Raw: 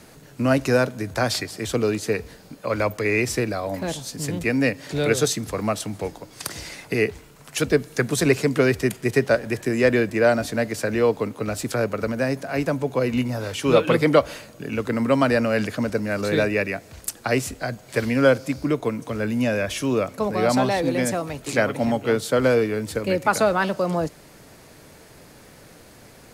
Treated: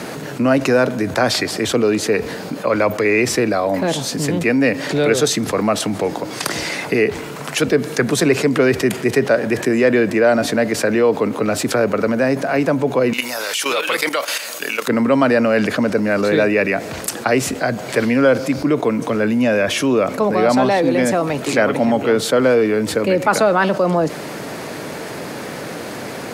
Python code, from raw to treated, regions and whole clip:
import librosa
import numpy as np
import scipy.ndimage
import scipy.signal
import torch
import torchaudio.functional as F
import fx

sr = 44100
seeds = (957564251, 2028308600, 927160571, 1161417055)

y = fx.chain(x, sr, fx.highpass(hz=500.0, slope=6),
    fx.level_steps(step_db=13),
    fx.tilt_eq(slope=4.5), at=(13.13, 14.88))
y = scipy.signal.sosfilt(scipy.signal.butter(2, 180.0, 'highpass', fs=sr, output='sos'), y)
y = fx.high_shelf(y, sr, hz=4400.0, db=-9.5)
y = fx.env_flatten(y, sr, amount_pct=50)
y = F.gain(torch.from_numpy(y), 2.5).numpy()